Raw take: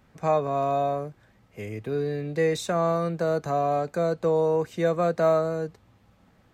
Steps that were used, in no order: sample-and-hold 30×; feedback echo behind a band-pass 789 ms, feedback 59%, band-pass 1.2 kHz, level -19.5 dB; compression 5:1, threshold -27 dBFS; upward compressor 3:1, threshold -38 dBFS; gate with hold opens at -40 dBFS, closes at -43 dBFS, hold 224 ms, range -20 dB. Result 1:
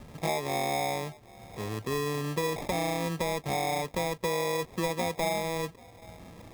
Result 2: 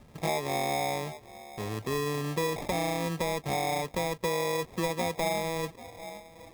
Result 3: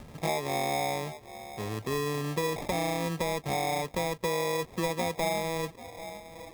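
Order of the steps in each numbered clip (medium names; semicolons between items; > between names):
upward compressor > compression > feedback echo behind a band-pass > gate with hold > sample-and-hold; gate with hold > upward compressor > feedback echo behind a band-pass > sample-and-hold > compression; feedback echo behind a band-pass > compression > sample-and-hold > upward compressor > gate with hold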